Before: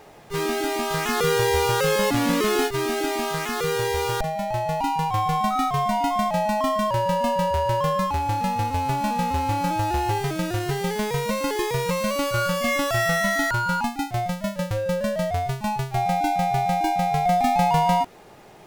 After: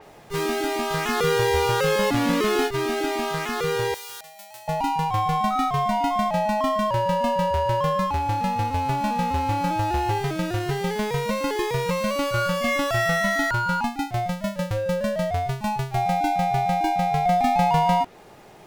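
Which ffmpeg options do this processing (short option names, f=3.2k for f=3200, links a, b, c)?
-filter_complex "[0:a]asettb=1/sr,asplit=3[a][b][c];[a]atrim=end=3.944[d];[b]atrim=start=3.94:end=4.68,asetpts=PTS-STARTPTS,afade=t=in:d=0.004:c=qsin,afade=t=out:st=0.736:d=0.004:c=qsin,aderivative[e];[c]atrim=start=4.676[f];[d][e]acrossfade=d=0.004:c1=hsin:c2=qsin[g];[g][f]acrossfade=d=0.004:c1=qsin:c2=hsin,adynamicequalizer=threshold=0.00794:dfrequency=5300:dqfactor=0.7:tfrequency=5300:tqfactor=0.7:attack=5:release=100:ratio=0.375:range=2.5:mode=cutabove:tftype=highshelf"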